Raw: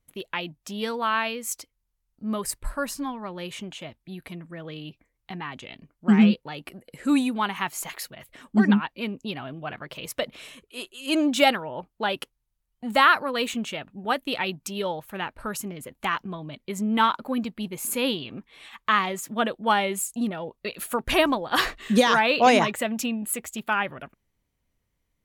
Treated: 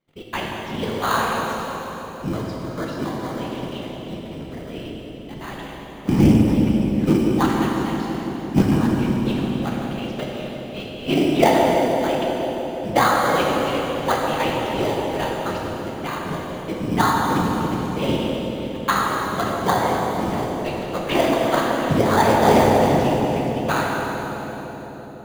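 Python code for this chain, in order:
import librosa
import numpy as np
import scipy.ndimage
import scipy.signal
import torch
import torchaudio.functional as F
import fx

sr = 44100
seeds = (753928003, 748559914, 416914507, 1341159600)

p1 = scipy.signal.sosfilt(scipy.signal.butter(4, 4400.0, 'lowpass', fs=sr, output='sos'), x)
p2 = fx.env_lowpass_down(p1, sr, base_hz=1400.0, full_db=-17.5)
p3 = scipy.signal.sosfilt(scipy.signal.butter(2, 160.0, 'highpass', fs=sr, output='sos'), p2)
p4 = fx.whisperise(p3, sr, seeds[0])
p5 = fx.sample_hold(p4, sr, seeds[1], rate_hz=2700.0, jitter_pct=0)
p6 = p4 + (p5 * 10.0 ** (-3.5 / 20.0))
p7 = p6 * (1.0 - 0.53 / 2.0 + 0.53 / 2.0 * np.cos(2.0 * np.pi * 2.7 * (np.arange(len(p6)) / sr)))
p8 = p7 + fx.echo_bbd(p7, sr, ms=167, stages=1024, feedback_pct=83, wet_db=-9, dry=0)
p9 = fx.rev_plate(p8, sr, seeds[2], rt60_s=3.3, hf_ratio=1.0, predelay_ms=0, drr_db=-2.0)
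y = fx.doppler_dist(p9, sr, depth_ms=0.18)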